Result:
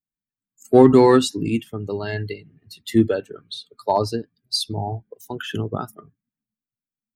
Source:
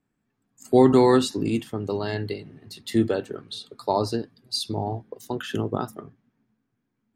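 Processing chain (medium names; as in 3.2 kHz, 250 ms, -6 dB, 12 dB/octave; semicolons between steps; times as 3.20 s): expander on every frequency bin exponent 1.5; in parallel at -8 dB: one-sided clip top -15 dBFS; on the sum: trim +3 dB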